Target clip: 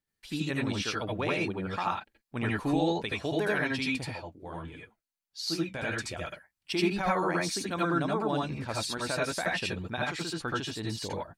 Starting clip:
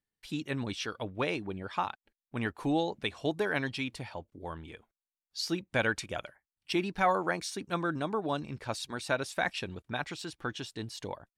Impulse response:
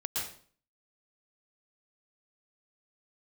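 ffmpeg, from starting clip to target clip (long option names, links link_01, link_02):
-filter_complex "[0:a]alimiter=limit=-22.5dB:level=0:latency=1:release=48,asettb=1/sr,asplit=3[link_01][link_02][link_03];[link_01]atrim=end=4.114[link_04];[link_02]atrim=start=4.11:end=6.21,asetpts=PTS-STARTPTS,afade=type=in:duration=0.004:curve=qsin,afade=type=out:start_time=2.096:duration=0.004:curve=qsin,flanger=delay=6.9:depth=9.3:regen=42:speed=1.6:shape=sinusoidal[link_05];[link_03]atrim=start=6.206[link_06];[link_04][link_05]acrossfade=duration=0.004:curve1=hsin:curve2=qsin[link_07];[link_07][link_06]acrossfade=duration=0.004:curve1=qsin:curve2=hsin[link_08];[1:a]atrim=start_sample=2205,afade=type=out:start_time=0.19:duration=0.01,atrim=end_sample=8820,asetrate=66150,aresample=44100[link_09];[link_08][link_09]afir=irnorm=-1:irlink=0,volume=6dB"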